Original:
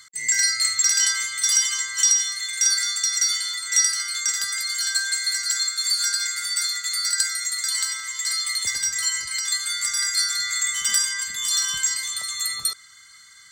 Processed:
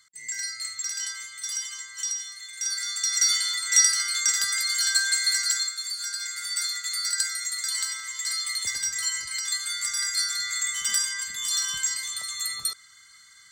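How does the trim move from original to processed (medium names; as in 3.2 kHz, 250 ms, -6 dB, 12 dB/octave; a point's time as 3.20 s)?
2.52 s -12 dB
3.29 s +0.5 dB
5.44 s +0.5 dB
5.93 s -10.5 dB
6.57 s -4 dB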